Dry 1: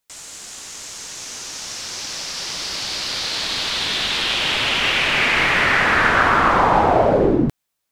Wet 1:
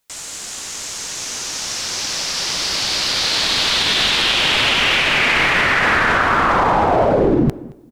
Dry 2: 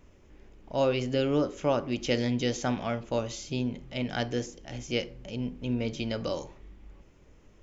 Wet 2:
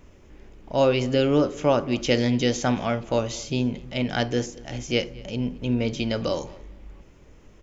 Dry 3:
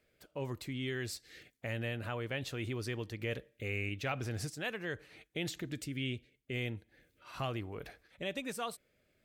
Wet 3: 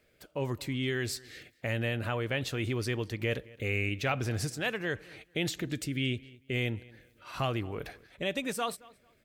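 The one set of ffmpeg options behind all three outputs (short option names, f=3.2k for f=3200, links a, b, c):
-filter_complex "[0:a]asplit=2[a][b];[b]adelay=222,lowpass=f=4.7k:p=1,volume=-22dB,asplit=2[c][d];[d]adelay=222,lowpass=f=4.7k:p=1,volume=0.23[e];[c][e]amix=inputs=2:normalize=0[f];[a][f]amix=inputs=2:normalize=0,alimiter=level_in=11.5dB:limit=-1dB:release=50:level=0:latency=1,volume=-5.5dB"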